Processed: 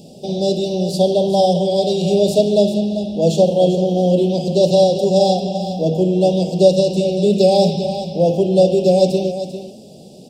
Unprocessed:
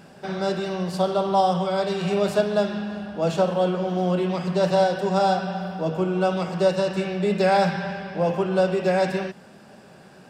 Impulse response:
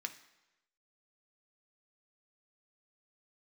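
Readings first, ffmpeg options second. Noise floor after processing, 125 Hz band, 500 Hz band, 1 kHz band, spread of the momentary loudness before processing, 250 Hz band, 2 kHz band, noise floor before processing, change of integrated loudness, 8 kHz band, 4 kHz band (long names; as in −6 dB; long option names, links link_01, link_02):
−40 dBFS, +7.5 dB, +8.5 dB, +0.5 dB, 7 LU, +8.0 dB, below −10 dB, −48 dBFS, +7.5 dB, +10.5 dB, +9.0 dB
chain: -filter_complex "[0:a]asuperstop=centerf=1500:order=8:qfactor=0.56,aecho=1:1:394:0.299,asplit=2[link_01][link_02];[1:a]atrim=start_sample=2205[link_03];[link_02][link_03]afir=irnorm=-1:irlink=0,volume=-3.5dB[link_04];[link_01][link_04]amix=inputs=2:normalize=0,volume=6.5dB"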